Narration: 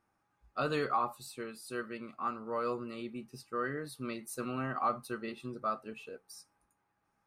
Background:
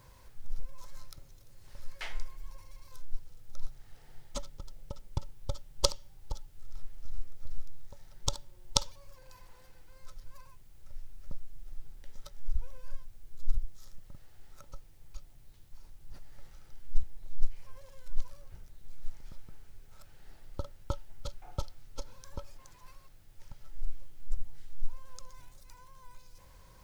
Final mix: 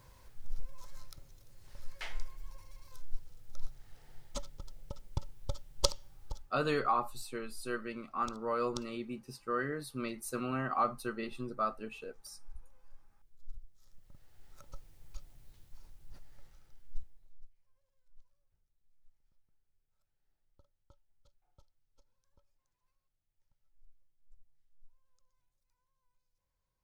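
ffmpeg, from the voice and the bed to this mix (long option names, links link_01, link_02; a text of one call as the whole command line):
ffmpeg -i stem1.wav -i stem2.wav -filter_complex "[0:a]adelay=5950,volume=1dB[link_01];[1:a]volume=14.5dB,afade=type=out:start_time=6.22:duration=0.37:silence=0.16788,afade=type=in:start_time=13.73:duration=1.14:silence=0.149624,afade=type=out:start_time=15.48:duration=1.98:silence=0.0375837[link_02];[link_01][link_02]amix=inputs=2:normalize=0" out.wav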